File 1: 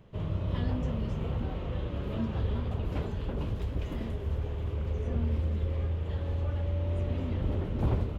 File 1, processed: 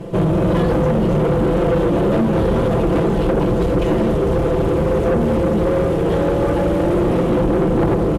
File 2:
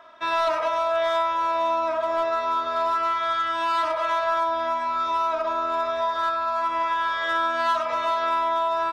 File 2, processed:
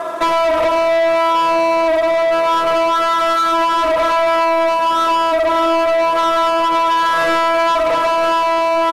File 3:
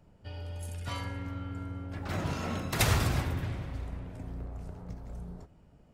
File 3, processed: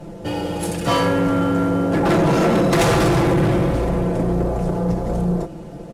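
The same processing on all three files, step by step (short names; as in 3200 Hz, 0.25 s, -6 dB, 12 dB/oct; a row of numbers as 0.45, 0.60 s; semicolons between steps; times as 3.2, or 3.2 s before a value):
CVSD 64 kbps; bell 410 Hz +14.5 dB 2.4 oct; comb 5.9 ms, depth 85%; compressor 5:1, threshold -23 dBFS; soft clip -27.5 dBFS; normalise peaks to -12 dBFS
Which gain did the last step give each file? +15.5, +15.5, +15.5 dB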